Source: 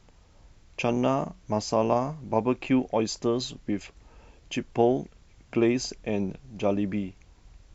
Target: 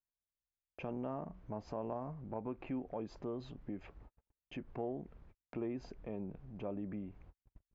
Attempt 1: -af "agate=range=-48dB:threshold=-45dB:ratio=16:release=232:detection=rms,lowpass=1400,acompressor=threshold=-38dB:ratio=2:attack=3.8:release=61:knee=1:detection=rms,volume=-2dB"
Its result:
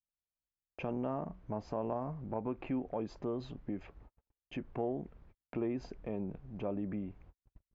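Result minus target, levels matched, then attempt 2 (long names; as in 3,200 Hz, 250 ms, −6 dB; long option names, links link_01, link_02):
downward compressor: peak gain reduction −4 dB
-af "agate=range=-48dB:threshold=-45dB:ratio=16:release=232:detection=rms,lowpass=1400,acompressor=threshold=-46.5dB:ratio=2:attack=3.8:release=61:knee=1:detection=rms,volume=-2dB"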